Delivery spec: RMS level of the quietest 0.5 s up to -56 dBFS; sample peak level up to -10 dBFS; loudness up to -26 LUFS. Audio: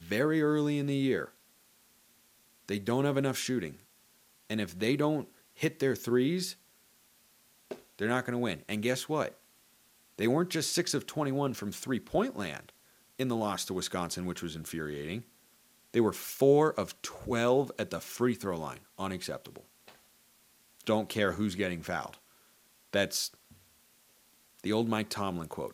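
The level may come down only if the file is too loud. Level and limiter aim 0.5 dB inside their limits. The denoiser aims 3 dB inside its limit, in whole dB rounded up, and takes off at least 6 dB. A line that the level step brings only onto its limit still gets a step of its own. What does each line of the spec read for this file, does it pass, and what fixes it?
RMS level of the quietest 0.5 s -65 dBFS: pass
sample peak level -12.0 dBFS: pass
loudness -32.0 LUFS: pass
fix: none needed

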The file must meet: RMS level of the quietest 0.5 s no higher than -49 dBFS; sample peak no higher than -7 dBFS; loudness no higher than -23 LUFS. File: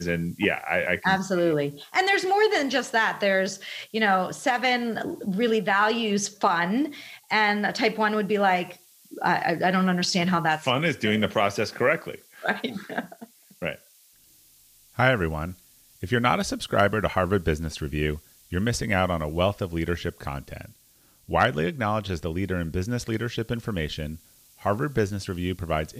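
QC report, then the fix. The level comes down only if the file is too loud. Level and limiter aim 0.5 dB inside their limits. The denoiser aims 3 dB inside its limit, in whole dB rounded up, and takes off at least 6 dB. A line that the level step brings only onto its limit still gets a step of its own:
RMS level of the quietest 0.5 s -59 dBFS: pass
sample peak -7.5 dBFS: pass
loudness -25.0 LUFS: pass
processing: none needed

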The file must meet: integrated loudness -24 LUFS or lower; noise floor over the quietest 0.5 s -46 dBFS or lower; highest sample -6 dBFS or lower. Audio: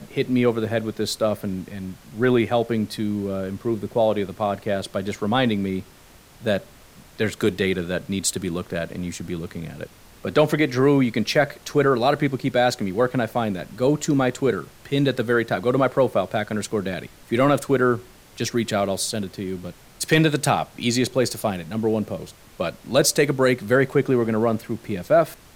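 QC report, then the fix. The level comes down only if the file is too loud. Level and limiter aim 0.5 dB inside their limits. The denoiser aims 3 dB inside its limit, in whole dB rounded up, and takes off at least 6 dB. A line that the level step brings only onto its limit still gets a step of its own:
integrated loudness -22.5 LUFS: fail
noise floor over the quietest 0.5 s -49 dBFS: pass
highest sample -5.0 dBFS: fail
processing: trim -2 dB

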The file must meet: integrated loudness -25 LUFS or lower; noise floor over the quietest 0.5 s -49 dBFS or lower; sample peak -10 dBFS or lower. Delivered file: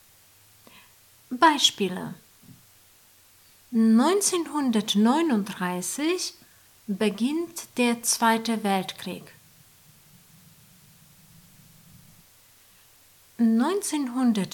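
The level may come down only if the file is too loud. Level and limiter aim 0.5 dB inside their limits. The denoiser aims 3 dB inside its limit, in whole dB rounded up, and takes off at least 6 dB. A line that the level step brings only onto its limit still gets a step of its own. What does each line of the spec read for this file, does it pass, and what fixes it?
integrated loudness -24.0 LUFS: fail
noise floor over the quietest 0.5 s -57 dBFS: pass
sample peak -6.0 dBFS: fail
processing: trim -1.5 dB; peak limiter -10.5 dBFS

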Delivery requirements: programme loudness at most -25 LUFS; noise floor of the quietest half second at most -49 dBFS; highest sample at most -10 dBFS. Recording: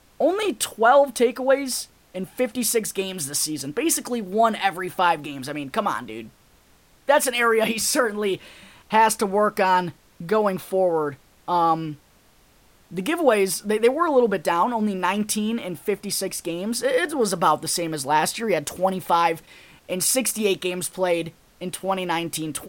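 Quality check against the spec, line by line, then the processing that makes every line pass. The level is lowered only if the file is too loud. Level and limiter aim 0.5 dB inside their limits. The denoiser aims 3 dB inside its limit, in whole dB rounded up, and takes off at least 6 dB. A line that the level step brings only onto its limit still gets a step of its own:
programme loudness -22.5 LUFS: fail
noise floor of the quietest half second -56 dBFS: pass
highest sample -5.5 dBFS: fail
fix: trim -3 dB; peak limiter -10.5 dBFS

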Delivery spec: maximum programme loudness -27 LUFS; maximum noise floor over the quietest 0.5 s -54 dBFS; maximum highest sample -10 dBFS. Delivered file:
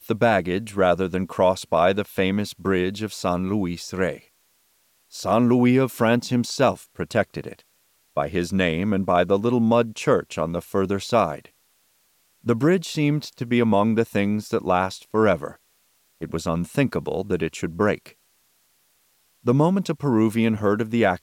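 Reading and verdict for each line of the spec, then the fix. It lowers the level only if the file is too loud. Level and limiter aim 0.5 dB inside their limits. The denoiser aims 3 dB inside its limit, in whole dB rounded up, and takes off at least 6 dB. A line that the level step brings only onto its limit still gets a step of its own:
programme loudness -22.5 LUFS: fail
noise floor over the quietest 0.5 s -64 dBFS: pass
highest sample -7.0 dBFS: fail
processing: trim -5 dB

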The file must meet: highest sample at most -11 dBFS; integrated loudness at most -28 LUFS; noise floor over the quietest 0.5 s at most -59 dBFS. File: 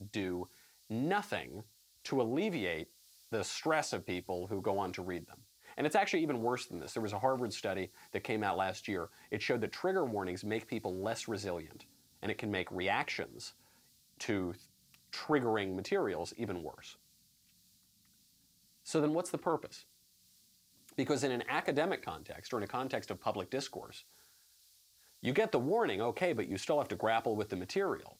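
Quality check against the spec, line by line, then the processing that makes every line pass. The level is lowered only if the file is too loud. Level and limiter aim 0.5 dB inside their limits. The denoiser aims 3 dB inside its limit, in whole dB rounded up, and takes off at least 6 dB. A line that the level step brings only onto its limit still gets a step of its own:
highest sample -18.5 dBFS: pass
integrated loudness -36.0 LUFS: pass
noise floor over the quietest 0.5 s -69 dBFS: pass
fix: none needed

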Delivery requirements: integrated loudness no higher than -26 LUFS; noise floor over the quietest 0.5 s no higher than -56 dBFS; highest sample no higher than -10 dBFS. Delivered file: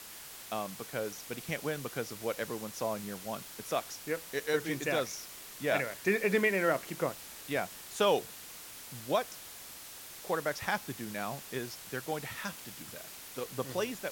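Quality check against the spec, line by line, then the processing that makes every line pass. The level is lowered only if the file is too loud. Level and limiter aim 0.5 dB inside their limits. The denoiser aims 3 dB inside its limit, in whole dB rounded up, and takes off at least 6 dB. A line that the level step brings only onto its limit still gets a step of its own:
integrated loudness -35.0 LUFS: pass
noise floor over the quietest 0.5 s -48 dBFS: fail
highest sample -16.0 dBFS: pass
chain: noise reduction 11 dB, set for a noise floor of -48 dBFS

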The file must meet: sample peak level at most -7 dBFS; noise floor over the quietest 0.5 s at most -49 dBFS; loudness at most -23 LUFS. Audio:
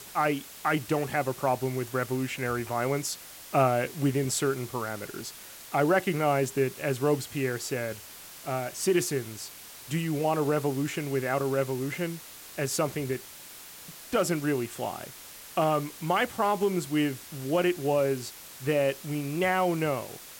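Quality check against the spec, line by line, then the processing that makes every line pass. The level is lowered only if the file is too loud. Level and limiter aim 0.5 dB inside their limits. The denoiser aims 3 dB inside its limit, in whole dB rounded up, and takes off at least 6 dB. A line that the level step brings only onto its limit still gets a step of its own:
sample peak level -11.0 dBFS: pass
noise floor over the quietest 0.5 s -46 dBFS: fail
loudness -29.0 LUFS: pass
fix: noise reduction 6 dB, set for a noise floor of -46 dBFS

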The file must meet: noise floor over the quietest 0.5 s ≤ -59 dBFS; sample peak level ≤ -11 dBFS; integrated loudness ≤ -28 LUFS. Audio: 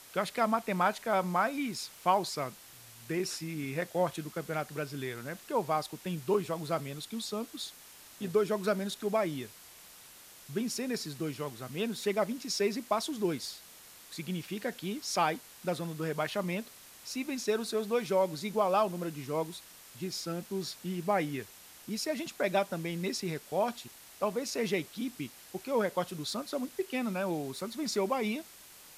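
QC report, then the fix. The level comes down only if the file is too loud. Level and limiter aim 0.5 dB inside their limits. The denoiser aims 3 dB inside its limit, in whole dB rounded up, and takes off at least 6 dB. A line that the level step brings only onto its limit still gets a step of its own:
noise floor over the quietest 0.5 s -53 dBFS: fail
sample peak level -13.5 dBFS: pass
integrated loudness -33.5 LUFS: pass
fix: noise reduction 9 dB, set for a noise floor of -53 dBFS

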